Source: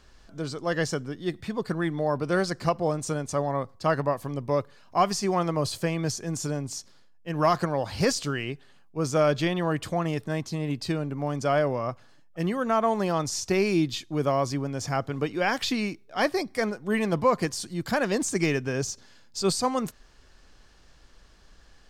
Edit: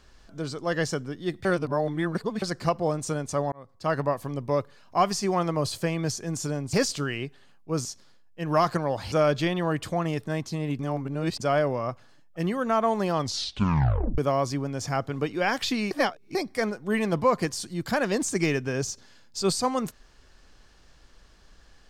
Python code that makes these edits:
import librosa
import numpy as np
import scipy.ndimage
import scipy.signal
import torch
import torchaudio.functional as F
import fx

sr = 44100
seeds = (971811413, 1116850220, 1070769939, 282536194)

y = fx.edit(x, sr, fx.reverse_span(start_s=1.45, length_s=0.97),
    fx.fade_in_span(start_s=3.52, length_s=0.48),
    fx.move(start_s=8.0, length_s=1.12, to_s=6.73),
    fx.reverse_span(start_s=10.79, length_s=0.61),
    fx.tape_stop(start_s=13.15, length_s=1.03),
    fx.reverse_span(start_s=15.91, length_s=0.44), tone=tone)